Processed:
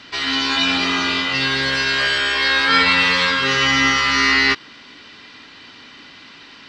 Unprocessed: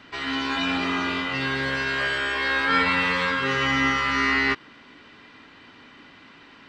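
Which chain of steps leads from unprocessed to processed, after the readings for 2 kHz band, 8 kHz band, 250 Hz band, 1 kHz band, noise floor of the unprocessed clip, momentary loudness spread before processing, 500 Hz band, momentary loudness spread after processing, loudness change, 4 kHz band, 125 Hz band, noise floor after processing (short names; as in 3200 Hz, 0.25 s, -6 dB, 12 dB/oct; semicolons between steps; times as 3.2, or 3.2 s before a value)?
+6.5 dB, +13.5 dB, +3.0 dB, +4.5 dB, -50 dBFS, 5 LU, +3.0 dB, 5 LU, +7.0 dB, +11.5 dB, +3.0 dB, -43 dBFS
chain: bell 4900 Hz +12.5 dB 1.6 oct; gain +3 dB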